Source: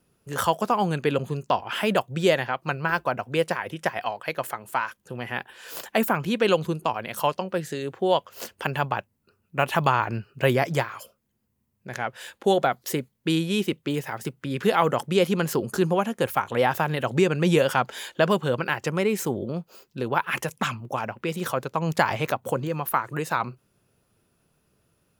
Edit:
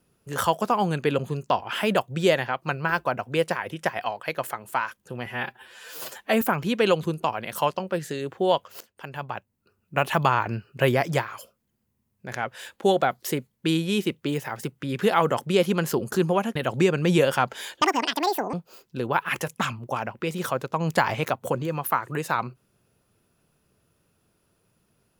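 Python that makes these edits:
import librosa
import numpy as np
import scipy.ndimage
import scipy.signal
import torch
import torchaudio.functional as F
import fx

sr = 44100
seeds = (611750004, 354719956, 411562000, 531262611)

y = fx.edit(x, sr, fx.stretch_span(start_s=5.26, length_s=0.77, factor=1.5),
    fx.fade_in_from(start_s=8.42, length_s=1.15, floor_db=-23.0),
    fx.cut(start_s=16.17, length_s=0.76),
    fx.speed_span(start_s=18.19, length_s=1.36, speed=1.89), tone=tone)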